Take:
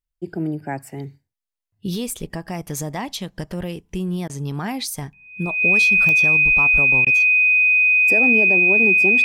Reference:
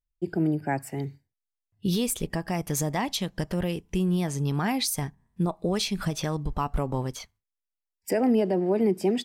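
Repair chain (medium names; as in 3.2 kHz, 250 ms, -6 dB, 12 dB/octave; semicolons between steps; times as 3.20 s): de-click; band-stop 2.5 kHz, Q 30; interpolate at 4.28/7.05 s, 14 ms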